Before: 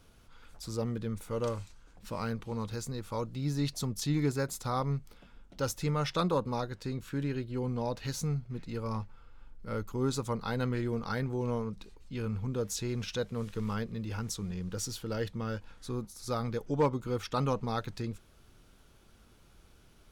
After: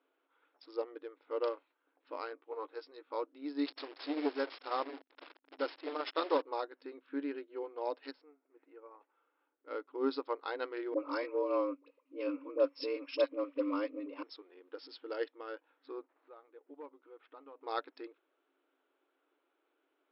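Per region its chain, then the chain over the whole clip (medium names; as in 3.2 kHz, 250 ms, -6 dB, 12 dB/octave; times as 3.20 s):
2.35–3.10 s: doubling 13 ms -5 dB + three bands expanded up and down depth 70%
3.66–6.42 s: one-bit delta coder 32 kbps, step -33.5 dBFS + transformer saturation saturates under 360 Hz
8.11–9.01 s: peaking EQ 3.9 kHz -12.5 dB 0.76 oct + compression 2.5:1, threshold -41 dBFS
10.94–14.23 s: rippled EQ curve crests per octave 0.81, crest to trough 11 dB + frequency shift +83 Hz + phase dispersion highs, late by 59 ms, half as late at 1 kHz
16.07–17.61 s: CVSD coder 64 kbps + level-controlled noise filter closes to 1.3 kHz, open at -22.5 dBFS + compression 2.5:1, threshold -47 dBFS
whole clip: local Wiener filter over 9 samples; FFT band-pass 260–5400 Hz; upward expansion 1.5:1, over -54 dBFS; trim +2.5 dB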